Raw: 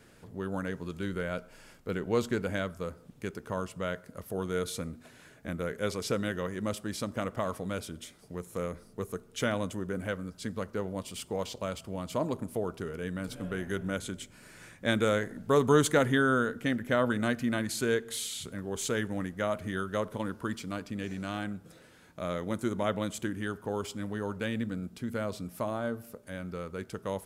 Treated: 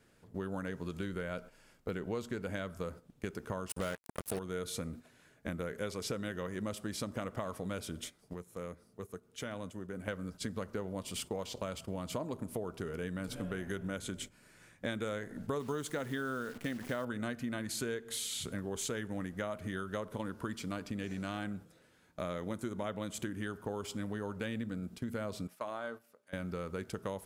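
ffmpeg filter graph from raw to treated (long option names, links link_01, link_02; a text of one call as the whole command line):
ffmpeg -i in.wav -filter_complex "[0:a]asettb=1/sr,asplit=3[link_01][link_02][link_03];[link_01]atrim=end=3.694[link_04];[link_02]atrim=start=3.69:end=4.39,asetpts=PTS-STARTPTS,afade=type=in:duration=0.004:curve=qsin,afade=type=out:start_time=0.696:duration=0.004:curve=qsin,equalizer=frequency=9400:width_type=o:width=0.38:gain=13,acontrast=67,acrusher=bits=4:mix=0:aa=0.5[link_05];[link_03]atrim=start=4.386[link_06];[link_04][link_05]acrossfade=duration=0.004:curve1=hsin:curve2=qsin[link_07];[link_07][link_06]acrossfade=duration=0.004:curve1=qsin:curve2=hsin,asettb=1/sr,asplit=3[link_08][link_09][link_10];[link_08]atrim=end=8.334[link_11];[link_09]atrim=start=8.33:end=10.08,asetpts=PTS-STARTPTS,afade=type=in:duration=0.004:curve=qsin,afade=type=out:start_time=1.746:duration=0.004:curve=qsin,highpass=50,acompressor=threshold=-45dB:ratio=2.5:attack=3.2:release=140:knee=1:detection=peak[link_12];[link_10]atrim=start=10.076[link_13];[link_11][link_12]acrossfade=duration=0.004:curve1=hsin:curve2=qsin[link_14];[link_14][link_13]acrossfade=duration=0.004:curve1=qsin:curve2=hsin,asettb=1/sr,asplit=3[link_15][link_16][link_17];[link_15]atrim=end=15.604[link_18];[link_16]atrim=start=15.6:end=17.05,asetpts=PTS-STARTPTS,afade=type=in:duration=0.004:curve=qsin,afade=type=out:start_time=1.446:duration=0.004:curve=qsin,equalizer=frequency=93:width_type=o:width=0.58:gain=-4.5,acrusher=bits=8:dc=4:mix=0:aa=0.000001[link_19];[link_17]atrim=start=17.046[link_20];[link_18][link_19]acrossfade=duration=0.004:curve1=hsin:curve2=qsin[link_21];[link_21][link_20]acrossfade=duration=0.004:curve1=qsin:curve2=hsin,asettb=1/sr,asplit=3[link_22][link_23][link_24];[link_22]atrim=end=25.474[link_25];[link_23]atrim=start=25.47:end=26.33,asetpts=PTS-STARTPTS,afade=type=in:duration=0.004:curve=qsin,afade=type=out:start_time=0.856:duration=0.004:curve=qsin,highpass=frequency=1200:poles=1,aemphasis=mode=reproduction:type=cd[link_26];[link_24]atrim=start=26.326[link_27];[link_25][link_26]acrossfade=duration=0.004:curve1=hsin:curve2=qsin[link_28];[link_28][link_27]acrossfade=duration=0.004:curve1=qsin:curve2=hsin,agate=range=-12dB:threshold=-45dB:ratio=16:detection=peak,acompressor=threshold=-38dB:ratio=6,volume=3dB" out.wav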